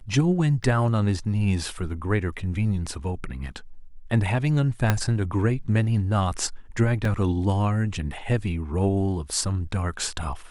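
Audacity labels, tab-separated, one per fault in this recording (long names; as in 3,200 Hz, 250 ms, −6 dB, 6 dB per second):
0.630000	0.640000	drop-out 7.5 ms
4.900000	4.900000	click −6 dBFS
7.050000	7.050000	drop-out 2.4 ms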